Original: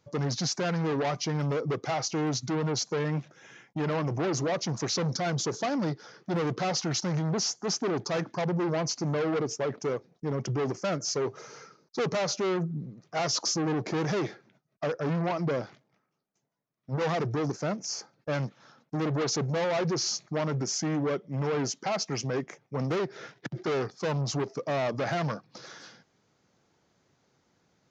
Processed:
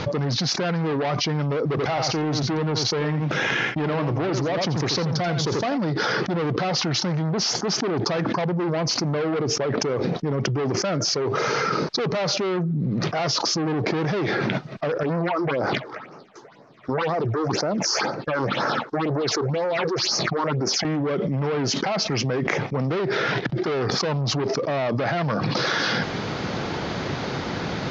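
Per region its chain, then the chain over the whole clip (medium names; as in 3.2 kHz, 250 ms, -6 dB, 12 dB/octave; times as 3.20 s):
1.65–5.78 s: companding laws mixed up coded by A + delay 85 ms -9 dB
15.03–20.85 s: tone controls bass -11 dB, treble -6 dB + phase shifter stages 6, 2 Hz, lowest notch 160–3400 Hz
whole clip: low-pass 4.6 kHz 24 dB/octave; level flattener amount 100%; trim +2 dB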